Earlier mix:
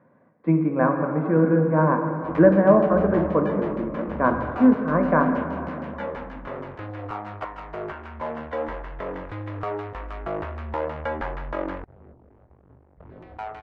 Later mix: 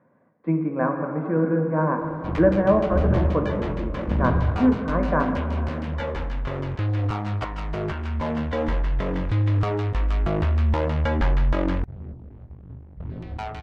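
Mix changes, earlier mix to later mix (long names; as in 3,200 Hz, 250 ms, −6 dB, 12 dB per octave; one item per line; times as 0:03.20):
speech −3.0 dB
background: remove three-way crossover with the lows and the highs turned down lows −15 dB, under 360 Hz, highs −14 dB, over 2,100 Hz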